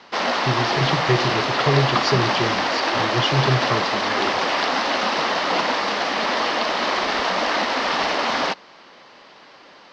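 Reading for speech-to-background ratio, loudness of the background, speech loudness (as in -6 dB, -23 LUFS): -3.5 dB, -21.0 LUFS, -24.5 LUFS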